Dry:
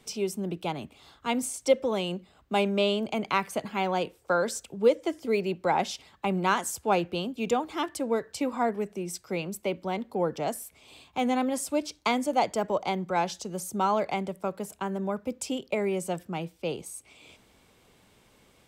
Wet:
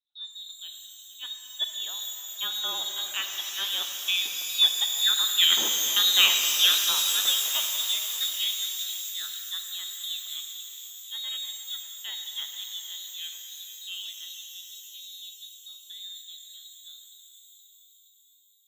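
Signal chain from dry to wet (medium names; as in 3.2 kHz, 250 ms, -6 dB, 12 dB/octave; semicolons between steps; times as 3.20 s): Doppler pass-by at 5.92 s, 18 m/s, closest 17 m; level-controlled noise filter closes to 570 Hz, open at -30.5 dBFS; gate with hold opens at -58 dBFS; filtered feedback delay 469 ms, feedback 60%, low-pass 2 kHz, level -13.5 dB; frequency inversion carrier 4 kHz; high-pass 220 Hz 24 dB/octave; pitch-shifted reverb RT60 3.5 s, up +12 st, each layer -2 dB, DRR 4 dB; trim +4.5 dB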